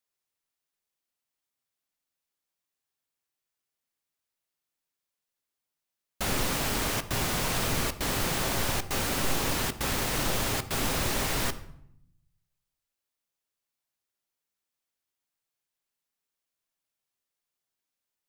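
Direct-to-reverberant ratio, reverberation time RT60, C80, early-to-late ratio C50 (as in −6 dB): 10.5 dB, 0.70 s, 17.0 dB, 14.0 dB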